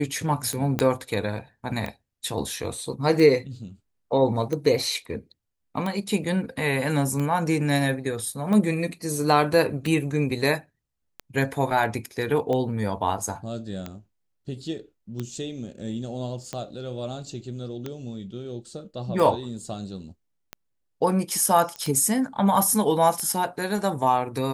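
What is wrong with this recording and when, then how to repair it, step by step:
scratch tick 45 rpm −17 dBFS
0:00.79: click −9 dBFS
0:21.76: click −19 dBFS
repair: click removal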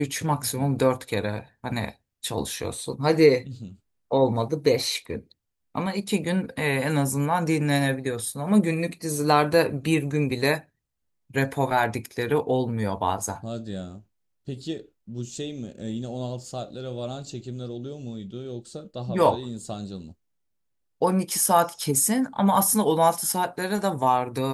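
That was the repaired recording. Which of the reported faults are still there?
0:00.79: click

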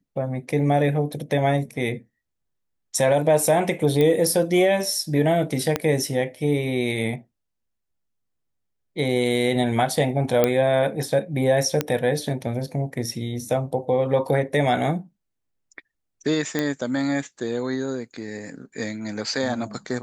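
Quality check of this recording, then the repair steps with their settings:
0:04.01: click −11 dBFS
0:05.76: click −7 dBFS
0:10.44: click −5 dBFS
0:11.81: click −7 dBFS
0:16.59: click −10 dBFS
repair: click removal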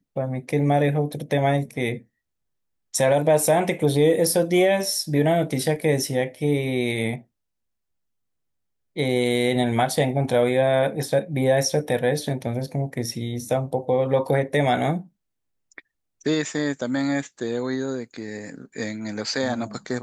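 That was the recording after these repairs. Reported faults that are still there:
0:05.76: click

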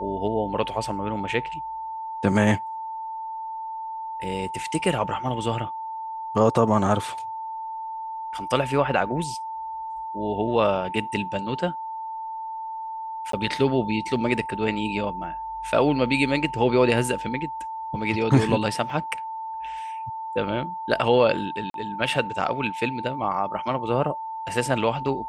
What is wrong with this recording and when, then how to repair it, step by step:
whistle 890 Hz −30 dBFS
0:13.32–0:13.33: drop-out 13 ms
0:18.90: drop-out 2.3 ms
0:21.70–0:21.74: drop-out 42 ms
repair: notch filter 890 Hz, Q 30
repair the gap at 0:13.32, 13 ms
repair the gap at 0:18.90, 2.3 ms
repair the gap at 0:21.70, 42 ms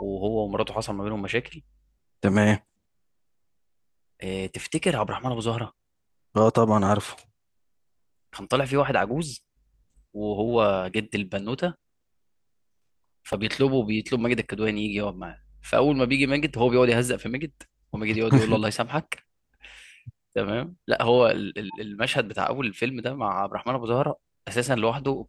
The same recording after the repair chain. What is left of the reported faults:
none of them is left

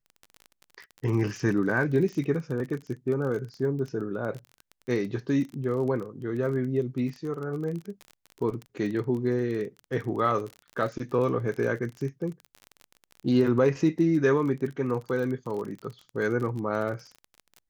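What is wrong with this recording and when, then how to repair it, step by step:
surface crackle 31 per second −33 dBFS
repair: click removal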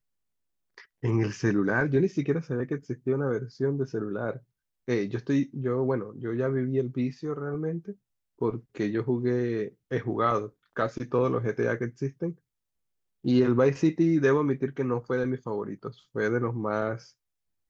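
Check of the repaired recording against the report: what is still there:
none of them is left

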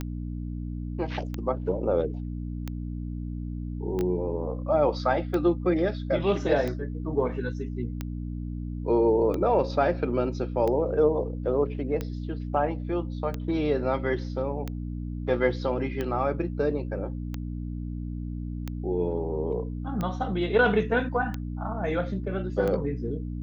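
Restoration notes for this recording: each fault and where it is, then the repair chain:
mains hum 60 Hz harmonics 5 −33 dBFS
scratch tick 45 rpm −18 dBFS
0:03.99: click −19 dBFS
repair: click removal
hum removal 60 Hz, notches 5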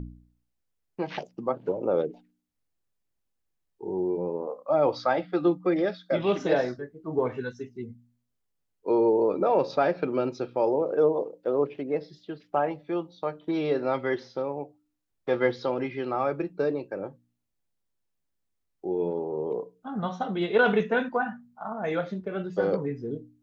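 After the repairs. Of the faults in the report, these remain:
0:03.99: click

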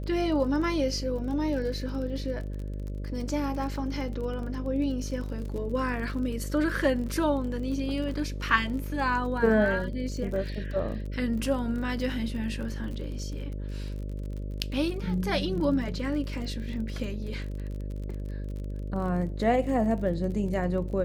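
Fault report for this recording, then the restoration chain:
mains buzz 50 Hz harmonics 12 −34 dBFS
surface crackle 35 per second −36 dBFS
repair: click removal
hum removal 50 Hz, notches 12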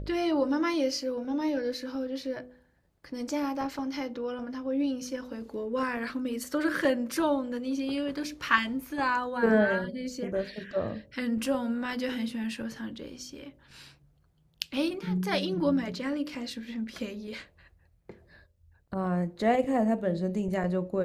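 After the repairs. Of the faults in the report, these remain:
none of them is left

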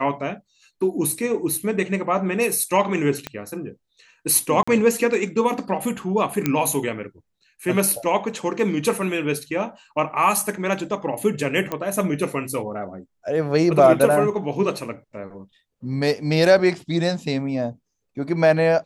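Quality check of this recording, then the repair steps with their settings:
0:03.27: click −13 dBFS
0:04.63–0:04.67: drop-out 45 ms
0:06.46: click −6 dBFS
0:11.72: click −12 dBFS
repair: click removal
repair the gap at 0:04.63, 45 ms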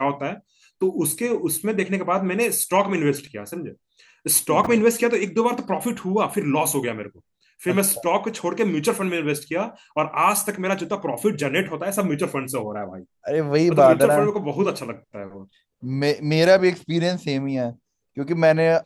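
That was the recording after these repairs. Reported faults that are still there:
0:03.27: click

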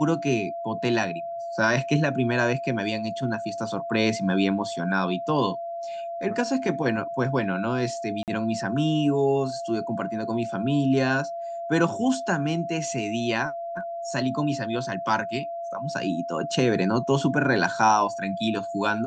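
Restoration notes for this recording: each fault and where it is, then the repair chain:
whistle 680 Hz −30 dBFS
0:08.23–0:08.28: drop-out 48 ms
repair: notch filter 680 Hz, Q 30
repair the gap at 0:08.23, 48 ms

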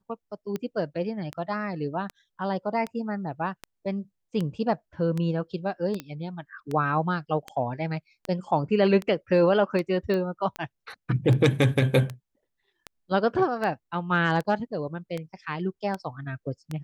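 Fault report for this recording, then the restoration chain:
scratch tick 78 rpm −18 dBFS
0:06.00: click −18 dBFS
0:10.14: click −19 dBFS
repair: click removal

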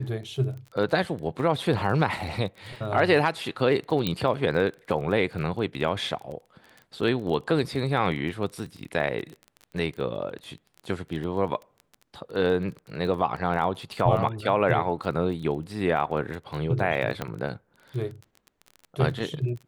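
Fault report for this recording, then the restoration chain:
surface crackle 22 per second −34 dBFS
0:04.07: click −12 dBFS
0:17.22: click −15 dBFS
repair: click removal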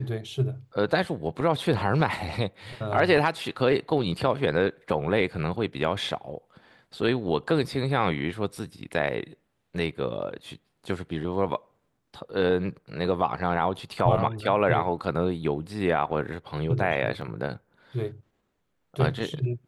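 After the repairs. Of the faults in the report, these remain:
0:17.22: click

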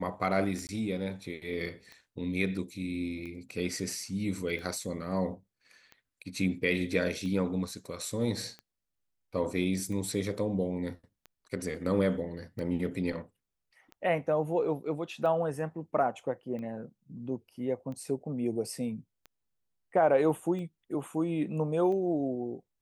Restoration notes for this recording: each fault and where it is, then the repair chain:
scratch tick 45 rpm
0:00.67–0:00.69: drop-out 19 ms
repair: click removal
repair the gap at 0:00.67, 19 ms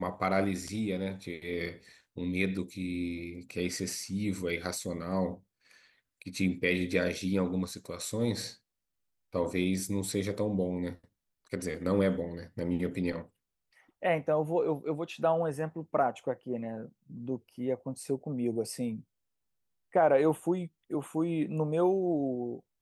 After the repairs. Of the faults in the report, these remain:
none of them is left

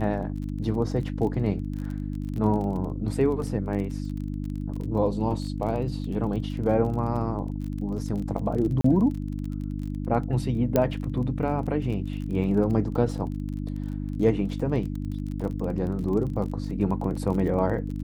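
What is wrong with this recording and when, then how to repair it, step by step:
surface crackle 27 per second −33 dBFS
mains hum 50 Hz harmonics 6 −31 dBFS
0:08.81–0:08.84: drop-out 34 ms
0:10.76: click −9 dBFS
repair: click removal
hum removal 50 Hz, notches 6
repair the gap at 0:08.81, 34 ms

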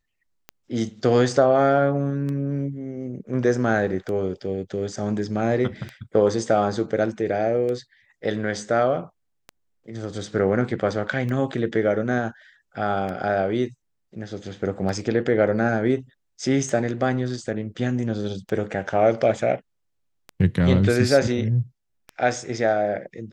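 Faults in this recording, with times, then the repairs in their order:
scratch tick 33 1/3 rpm −20 dBFS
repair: click removal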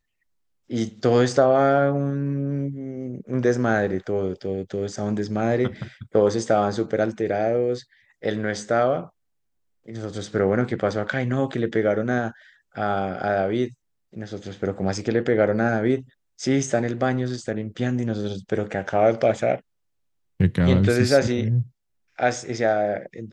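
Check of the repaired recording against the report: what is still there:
none of them is left

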